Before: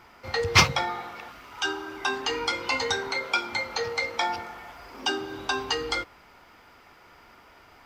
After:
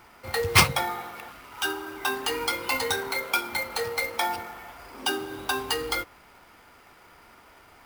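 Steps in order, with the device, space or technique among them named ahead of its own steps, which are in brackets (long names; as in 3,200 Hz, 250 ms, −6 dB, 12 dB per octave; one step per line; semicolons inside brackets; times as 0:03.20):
early companding sampler (sample-rate reduction 14,000 Hz, jitter 0%; log-companded quantiser 6 bits)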